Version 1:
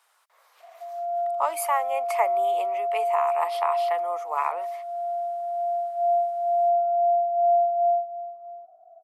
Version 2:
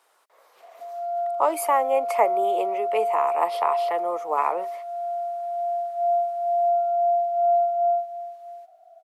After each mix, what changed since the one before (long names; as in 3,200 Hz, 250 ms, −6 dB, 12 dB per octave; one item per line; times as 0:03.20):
speech: remove high-pass filter 920 Hz 12 dB per octave
background: remove low-pass filter 1,100 Hz 24 dB per octave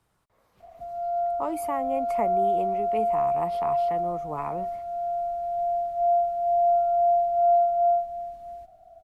speech −10.5 dB
master: remove high-pass filter 460 Hz 24 dB per octave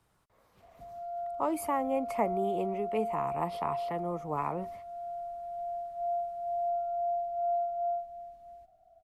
background −10.5 dB